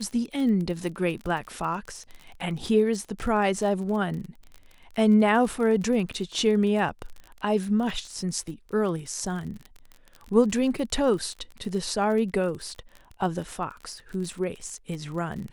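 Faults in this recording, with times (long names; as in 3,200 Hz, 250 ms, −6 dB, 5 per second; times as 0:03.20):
surface crackle 32 per second −33 dBFS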